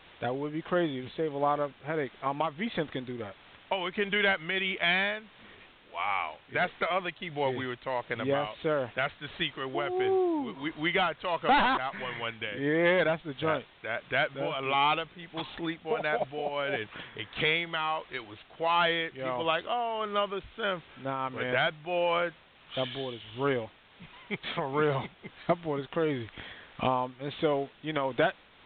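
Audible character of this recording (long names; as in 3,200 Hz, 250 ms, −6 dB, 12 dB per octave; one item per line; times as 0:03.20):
a quantiser's noise floor 8 bits, dither triangular
tremolo triangle 1.5 Hz, depth 50%
mu-law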